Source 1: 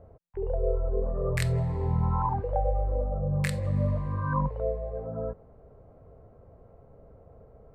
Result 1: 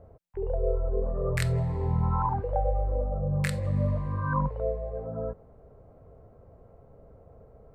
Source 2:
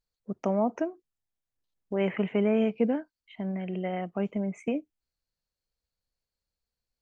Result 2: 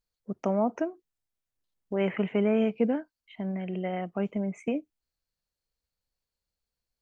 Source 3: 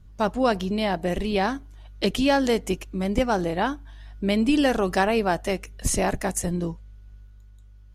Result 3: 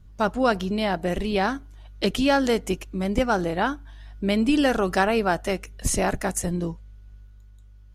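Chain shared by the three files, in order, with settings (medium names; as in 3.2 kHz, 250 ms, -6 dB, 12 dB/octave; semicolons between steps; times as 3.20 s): dynamic bell 1.4 kHz, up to +6 dB, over -48 dBFS, Q 5.4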